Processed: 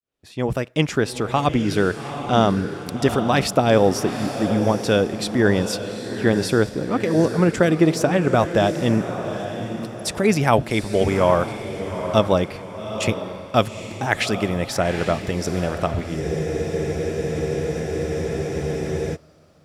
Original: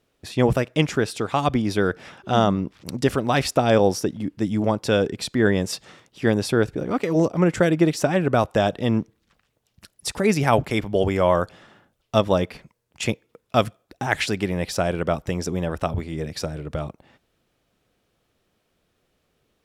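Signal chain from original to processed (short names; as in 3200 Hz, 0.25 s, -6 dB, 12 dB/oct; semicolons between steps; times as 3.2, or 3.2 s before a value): opening faded in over 0.92 s; diffused feedback echo 0.821 s, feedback 41%, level -9 dB; spectral freeze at 16.22, 2.92 s; gain +1.5 dB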